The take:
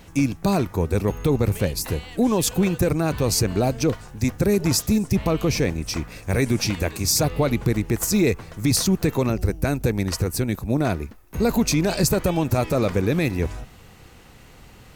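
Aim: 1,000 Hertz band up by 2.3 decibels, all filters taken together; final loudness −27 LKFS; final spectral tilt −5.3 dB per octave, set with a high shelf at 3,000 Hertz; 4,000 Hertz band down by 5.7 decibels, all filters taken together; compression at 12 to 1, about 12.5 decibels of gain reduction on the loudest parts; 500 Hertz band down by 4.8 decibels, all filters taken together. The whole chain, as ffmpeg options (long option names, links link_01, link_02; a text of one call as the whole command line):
ffmpeg -i in.wav -af "equalizer=frequency=500:width_type=o:gain=-7.5,equalizer=frequency=1000:width_type=o:gain=6.5,highshelf=frequency=3000:gain=-4,equalizer=frequency=4000:width_type=o:gain=-4,acompressor=threshold=-30dB:ratio=12,volume=8.5dB" out.wav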